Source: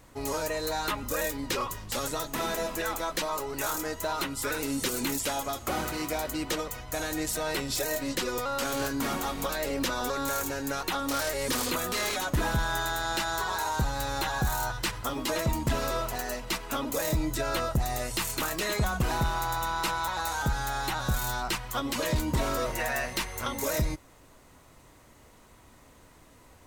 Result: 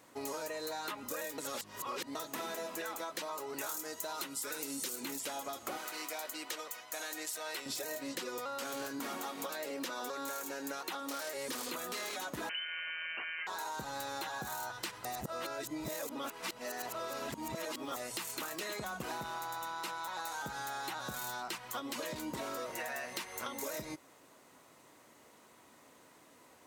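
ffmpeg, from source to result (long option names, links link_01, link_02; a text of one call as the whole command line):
ffmpeg -i in.wav -filter_complex "[0:a]asettb=1/sr,asplit=3[link_01][link_02][link_03];[link_01]atrim=end=3.694[link_04];[link_02]atrim=start=3.69:end=4.96,asetpts=PTS-STARTPTS,afade=type=in:duration=0.004:curve=qsin,afade=type=out:start_time=1.266:duration=0.004:curve=qsin,bass=frequency=250:gain=0,treble=frequency=4000:gain=8[link_05];[link_03]atrim=start=4.956[link_06];[link_04][link_05]acrossfade=duration=0.004:curve1=hsin:curve2=qsin[link_07];[link_07][link_06]acrossfade=duration=0.004:curve1=qsin:curve2=hsin,asettb=1/sr,asplit=3[link_08][link_09][link_10];[link_08]atrim=end=5.774[link_11];[link_09]atrim=start=5.77:end=7.66,asetpts=PTS-STARTPTS,afade=type=in:duration=0.004:curve=qsin,afade=type=out:start_time=1.886:duration=0.004:curve=qsin,highpass=frequency=1000:poles=1[link_12];[link_10]atrim=start=7.656[link_13];[link_11][link_12]acrossfade=duration=0.004:curve1=hsin:curve2=qsin[link_14];[link_14][link_13]acrossfade=duration=0.004:curve1=qsin:curve2=hsin,asettb=1/sr,asplit=3[link_15][link_16][link_17];[link_15]atrim=end=8.994[link_18];[link_16]atrim=start=8.99:end=11.37,asetpts=PTS-STARTPTS,afade=type=in:duration=0.004:curve=qsin,afade=type=out:start_time=2.376:duration=0.004:curve=qsin,highpass=170[link_19];[link_17]atrim=start=11.366[link_20];[link_18][link_19]acrossfade=duration=0.004:curve1=hsin:curve2=qsin[link_21];[link_21][link_20]acrossfade=duration=0.004:curve1=qsin:curve2=hsin,asettb=1/sr,asplit=3[link_22][link_23][link_24];[link_22]atrim=end=12.494[link_25];[link_23]atrim=start=12.49:end=13.47,asetpts=PTS-STARTPTS,afade=type=in:duration=0.004:curve=qsin,afade=type=out:start_time=0.976:duration=0.004:curve=qsin,lowpass=frequency=2600:width_type=q:width=0.5098,lowpass=frequency=2600:width_type=q:width=0.6013,lowpass=frequency=2600:width_type=q:width=0.9,lowpass=frequency=2600:width_type=q:width=2.563,afreqshift=-3100[link_26];[link_24]atrim=start=13.466[link_27];[link_25][link_26]acrossfade=duration=0.004:curve1=hsin:curve2=qsin[link_28];[link_28][link_27]acrossfade=duration=0.004:curve1=qsin:curve2=hsin,asplit=5[link_29][link_30][link_31][link_32][link_33];[link_29]atrim=end=1.382[link_34];[link_30]atrim=start=1.378:end=2.152,asetpts=PTS-STARTPTS,areverse[link_35];[link_31]atrim=start=2.148:end=15.052[link_36];[link_32]atrim=start=15.048:end=17.962,asetpts=PTS-STARTPTS,areverse[link_37];[link_33]atrim=start=17.958[link_38];[link_34][link_35]acrossfade=duration=0.004:curve1=hsin:curve2=hsin[link_39];[link_39][link_36]acrossfade=duration=0.004:curve1=hsin:curve2=hsin[link_40];[link_40][link_37]acrossfade=duration=0.004:curve1=hsin:curve2=hsin[link_41];[link_41][link_38]acrossfade=duration=0.004:curve1=hsin:curve2=hsin,highpass=230,acompressor=threshold=-34dB:ratio=6,volume=-3dB" out.wav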